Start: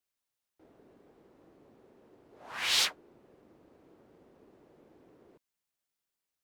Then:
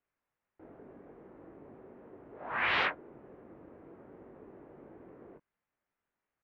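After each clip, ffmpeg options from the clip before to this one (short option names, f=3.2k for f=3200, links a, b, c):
-filter_complex "[0:a]lowpass=f=2.1k:w=0.5412,lowpass=f=2.1k:w=1.3066,asplit=2[a][b];[b]adelay=21,volume=-8dB[c];[a][c]amix=inputs=2:normalize=0,volume=7dB"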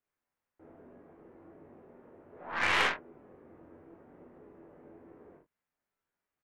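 -af "aecho=1:1:12|45|69:0.501|0.631|0.335,aeval=exprs='0.2*(cos(1*acos(clip(val(0)/0.2,-1,1)))-cos(1*PI/2))+0.0126*(cos(6*acos(clip(val(0)/0.2,-1,1)))-cos(6*PI/2))+0.0112*(cos(7*acos(clip(val(0)/0.2,-1,1)))-cos(7*PI/2))':c=same"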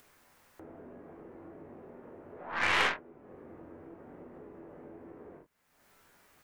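-af "acompressor=mode=upward:threshold=-42dB:ratio=2.5"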